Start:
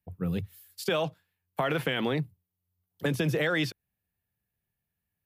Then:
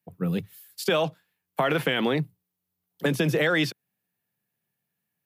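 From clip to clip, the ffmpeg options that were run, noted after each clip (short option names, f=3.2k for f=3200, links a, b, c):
-af "highpass=f=140:w=0.5412,highpass=f=140:w=1.3066,volume=4.5dB"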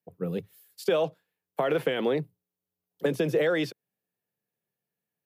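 -af "equalizer=f=470:t=o:w=1.2:g=10,volume=-8dB"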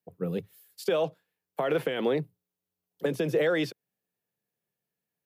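-af "alimiter=limit=-16.5dB:level=0:latency=1:release=188"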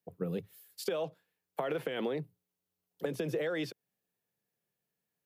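-af "acompressor=threshold=-31dB:ratio=6"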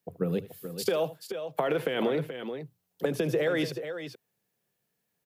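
-af "aecho=1:1:77|424|432:0.133|0.106|0.335,volume=6.5dB"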